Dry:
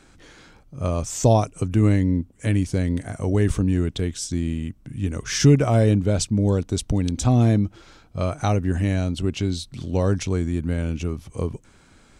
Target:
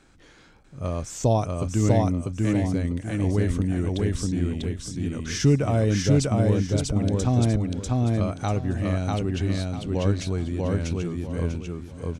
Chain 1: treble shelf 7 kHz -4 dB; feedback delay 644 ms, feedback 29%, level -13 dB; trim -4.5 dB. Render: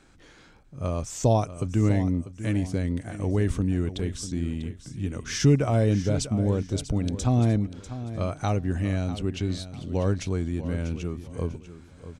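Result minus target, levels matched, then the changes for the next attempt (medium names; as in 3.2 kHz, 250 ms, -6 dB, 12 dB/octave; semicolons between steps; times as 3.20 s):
echo-to-direct -11.5 dB
change: feedback delay 644 ms, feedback 29%, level -1.5 dB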